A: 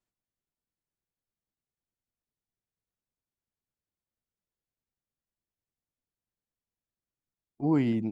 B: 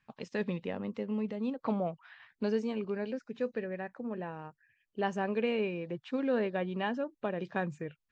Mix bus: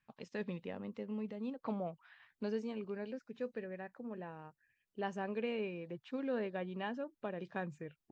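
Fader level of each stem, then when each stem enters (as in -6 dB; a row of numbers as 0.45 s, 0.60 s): -2.5 dB, -7.0 dB; 0.50 s, 0.00 s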